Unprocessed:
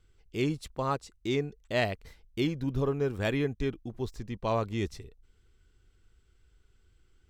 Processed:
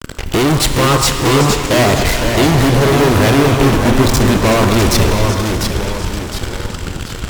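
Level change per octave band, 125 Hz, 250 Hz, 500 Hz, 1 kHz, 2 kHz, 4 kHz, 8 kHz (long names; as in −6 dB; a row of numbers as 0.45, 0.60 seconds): +21.5, +20.0, +18.0, +21.5, +21.0, +24.5, +33.5 decibels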